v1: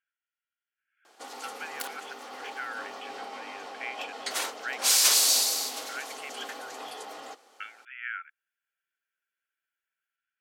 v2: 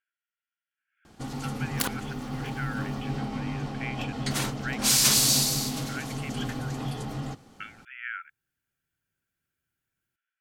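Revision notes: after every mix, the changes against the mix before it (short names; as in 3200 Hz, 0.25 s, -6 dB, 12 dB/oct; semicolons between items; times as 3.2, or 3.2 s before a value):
second sound +8.5 dB; master: remove HPF 450 Hz 24 dB/oct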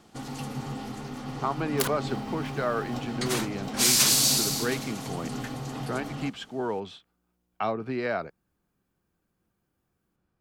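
speech: remove brick-wall FIR band-pass 1300–3500 Hz; first sound: entry -1.05 s; master: add low shelf 140 Hz -7.5 dB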